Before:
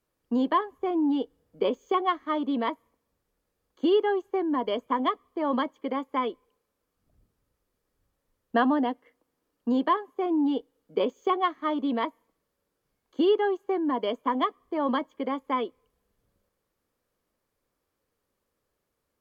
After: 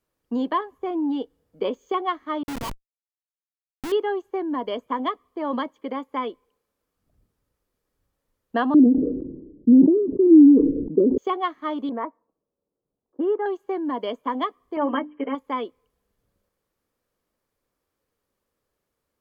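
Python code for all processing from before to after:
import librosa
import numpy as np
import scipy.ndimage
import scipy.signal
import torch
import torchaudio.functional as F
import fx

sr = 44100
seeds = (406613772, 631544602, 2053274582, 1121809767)

y = fx.chain(x, sr, fx.resample_bad(factor=8, down='none', up='zero_stuff'),
    fx.curve_eq(hz=(130.0, 330.0, 660.0, 1100.0, 1600.0, 2300.0, 5100.0), db=(0, -8, -3, 13, -16, -1, -12)),
    fx.schmitt(flips_db=-19.0), at=(2.43, 3.92))
y = fx.chain(y, sr, fx.steep_lowpass(hz=620.0, slope=96),
    fx.low_shelf_res(hz=440.0, db=8.5, q=3.0),
    fx.sustainer(db_per_s=50.0), at=(8.74, 11.18))
y = fx.chain(y, sr, fx.lowpass(hz=1700.0, slope=24),
    fx.env_lowpass(base_hz=560.0, full_db=-18.5),
    fx.low_shelf(hz=120.0, db=-12.0), at=(11.89, 13.46))
y = fx.chain(y, sr, fx.brickwall_lowpass(high_hz=3200.0),
    fx.hum_notches(base_hz=50, count=7),
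    fx.comb(ms=6.9, depth=0.93), at=(14.76, 15.35))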